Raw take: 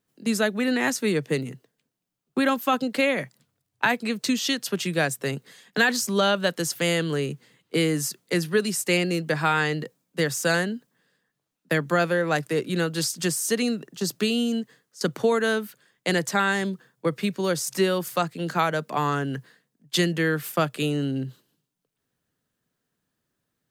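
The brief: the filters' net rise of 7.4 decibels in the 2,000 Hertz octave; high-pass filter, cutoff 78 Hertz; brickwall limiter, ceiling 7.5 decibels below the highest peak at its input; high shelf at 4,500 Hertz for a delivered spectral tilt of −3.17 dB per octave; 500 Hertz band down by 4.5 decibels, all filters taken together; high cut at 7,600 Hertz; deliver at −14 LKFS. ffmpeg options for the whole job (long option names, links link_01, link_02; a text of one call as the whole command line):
ffmpeg -i in.wav -af "highpass=78,lowpass=7600,equalizer=frequency=500:width_type=o:gain=-6,equalizer=frequency=2000:width_type=o:gain=9,highshelf=frequency=4500:gain=4.5,volume=9.5dB,alimiter=limit=-0.5dB:level=0:latency=1" out.wav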